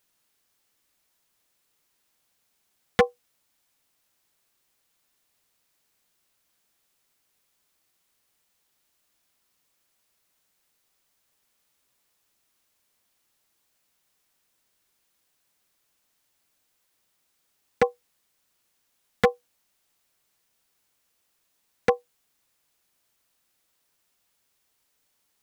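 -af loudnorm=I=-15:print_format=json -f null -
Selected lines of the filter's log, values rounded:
"input_i" : "-27.1",
"input_tp" : "-10.1",
"input_lra" : "3.9",
"input_thresh" : "-42.7",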